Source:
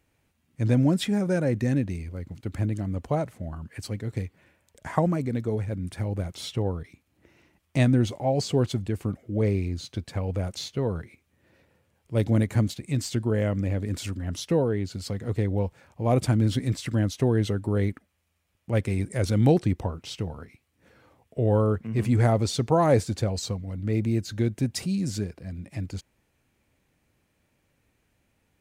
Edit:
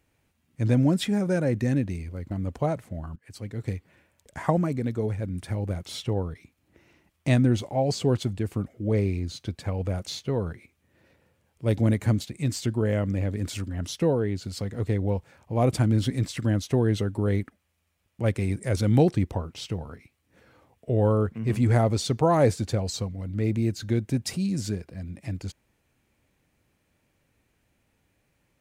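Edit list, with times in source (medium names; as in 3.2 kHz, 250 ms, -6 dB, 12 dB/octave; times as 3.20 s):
2.31–2.80 s: delete
3.65–4.14 s: fade in, from -20.5 dB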